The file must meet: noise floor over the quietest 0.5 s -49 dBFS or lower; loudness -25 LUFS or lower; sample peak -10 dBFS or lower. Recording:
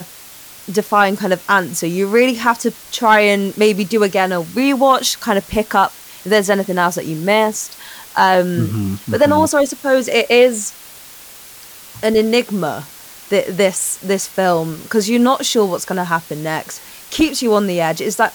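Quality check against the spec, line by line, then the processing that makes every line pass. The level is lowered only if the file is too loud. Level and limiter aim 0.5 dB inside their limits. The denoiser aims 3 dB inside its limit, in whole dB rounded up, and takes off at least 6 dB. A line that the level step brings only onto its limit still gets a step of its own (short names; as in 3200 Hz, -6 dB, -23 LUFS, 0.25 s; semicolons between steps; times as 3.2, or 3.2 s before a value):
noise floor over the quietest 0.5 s -38 dBFS: fail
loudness -16.0 LUFS: fail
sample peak -2.0 dBFS: fail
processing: denoiser 6 dB, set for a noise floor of -38 dBFS; gain -9.5 dB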